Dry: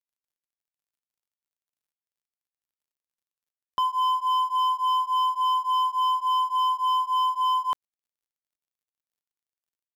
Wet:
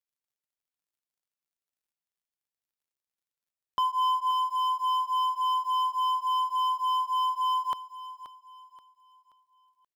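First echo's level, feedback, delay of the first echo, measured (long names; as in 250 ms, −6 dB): −13.5 dB, 37%, 529 ms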